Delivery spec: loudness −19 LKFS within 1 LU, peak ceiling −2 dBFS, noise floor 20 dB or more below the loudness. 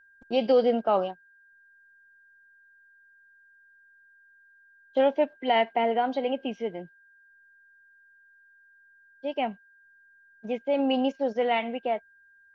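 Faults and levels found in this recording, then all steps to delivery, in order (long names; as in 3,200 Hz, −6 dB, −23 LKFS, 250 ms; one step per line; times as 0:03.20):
interfering tone 1,600 Hz; level of the tone −56 dBFS; integrated loudness −27.0 LKFS; sample peak −12.0 dBFS; target loudness −19.0 LKFS
→ notch filter 1,600 Hz, Q 30
level +8 dB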